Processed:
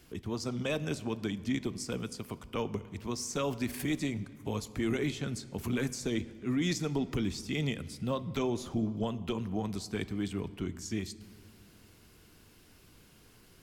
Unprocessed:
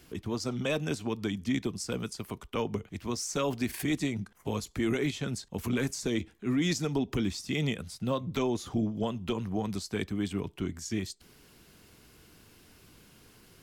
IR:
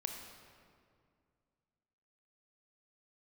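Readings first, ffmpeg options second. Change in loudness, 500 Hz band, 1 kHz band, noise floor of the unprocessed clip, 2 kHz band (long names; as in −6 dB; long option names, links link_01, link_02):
−2.0 dB, −2.5 dB, −2.5 dB, −60 dBFS, −2.5 dB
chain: -filter_complex "[0:a]asplit=2[link_01][link_02];[1:a]atrim=start_sample=2205,lowshelf=frequency=110:gain=9[link_03];[link_02][link_03]afir=irnorm=-1:irlink=0,volume=-8.5dB[link_04];[link_01][link_04]amix=inputs=2:normalize=0,volume=-5dB"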